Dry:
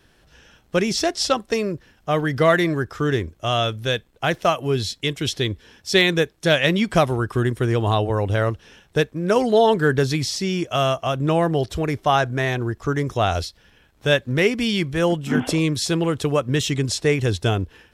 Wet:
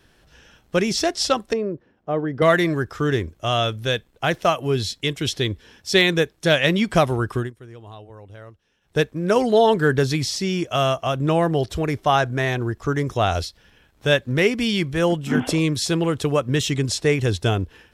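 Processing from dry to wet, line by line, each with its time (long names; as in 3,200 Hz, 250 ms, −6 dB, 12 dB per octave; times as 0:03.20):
0:01.53–0:02.42: resonant band-pass 370 Hz, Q 0.74
0:07.33–0:09.00: duck −21 dB, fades 0.19 s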